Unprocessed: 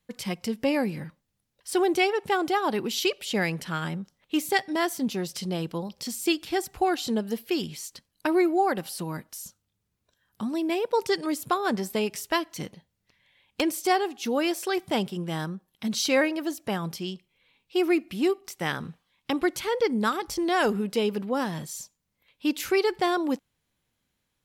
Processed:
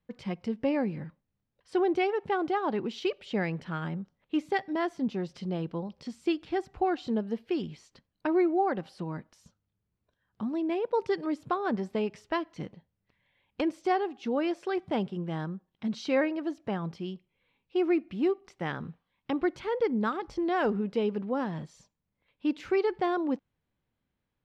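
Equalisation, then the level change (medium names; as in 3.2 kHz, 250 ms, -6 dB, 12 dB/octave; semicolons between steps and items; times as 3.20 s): tape spacing loss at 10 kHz 30 dB; -1.5 dB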